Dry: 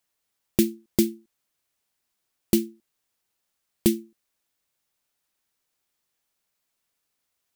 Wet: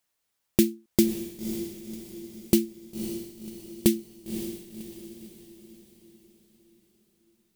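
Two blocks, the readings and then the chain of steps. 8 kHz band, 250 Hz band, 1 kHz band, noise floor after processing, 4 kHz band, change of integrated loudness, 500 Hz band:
+0.5 dB, +0.5 dB, n/a, -79 dBFS, +0.5 dB, -2.5 dB, +0.5 dB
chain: diffused feedback echo 0.545 s, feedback 48%, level -9 dB

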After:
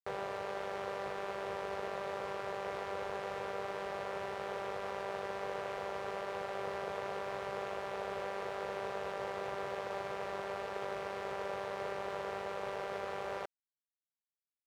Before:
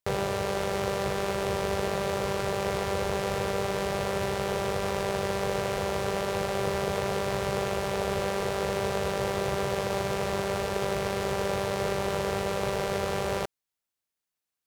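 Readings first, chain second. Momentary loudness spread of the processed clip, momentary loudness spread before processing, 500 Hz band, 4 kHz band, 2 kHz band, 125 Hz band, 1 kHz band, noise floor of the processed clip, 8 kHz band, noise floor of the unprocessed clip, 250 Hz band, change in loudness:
1 LU, 1 LU, -10.5 dB, -14.0 dB, -9.0 dB, -20.5 dB, -8.0 dB, under -85 dBFS, -19.5 dB, under -85 dBFS, -16.0 dB, -10.5 dB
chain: crossover distortion -42.5 dBFS; overdrive pedal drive 10 dB, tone 1200 Hz, clips at -14.5 dBFS; low shelf 310 Hz -8.5 dB; gain -7 dB

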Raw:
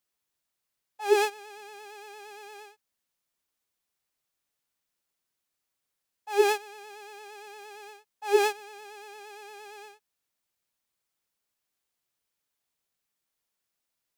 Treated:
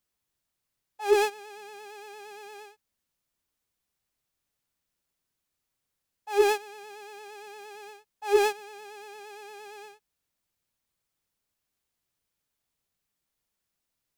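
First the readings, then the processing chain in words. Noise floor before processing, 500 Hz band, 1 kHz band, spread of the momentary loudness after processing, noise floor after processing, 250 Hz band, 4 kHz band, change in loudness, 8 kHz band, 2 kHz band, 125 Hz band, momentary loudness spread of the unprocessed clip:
-84 dBFS, +1.0 dB, 0.0 dB, 20 LU, -84 dBFS, +1.0 dB, -0.5 dB, 0.0 dB, -0.5 dB, -0.5 dB, n/a, 20 LU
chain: low shelf 210 Hz +10 dB; in parallel at -5 dB: hard clip -19.5 dBFS, distortion -8 dB; on the sum: gain -4 dB

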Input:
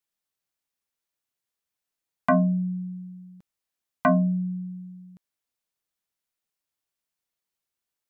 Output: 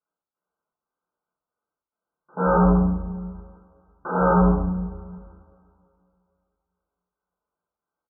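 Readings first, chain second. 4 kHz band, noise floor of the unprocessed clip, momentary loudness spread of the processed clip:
n/a, under -85 dBFS, 21 LU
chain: wrapped overs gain 21.5 dB; bell 840 Hz +5.5 dB 2.8 oct; step gate "x..xxx.xxxxx.x" 133 bpm -24 dB; FFT band-pass 140–1600 Hz; frequency-shifting echo 86 ms, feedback 38%, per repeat -130 Hz, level -3.5 dB; two-slope reverb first 0.74 s, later 2.7 s, from -21 dB, DRR -7.5 dB; gain -4 dB

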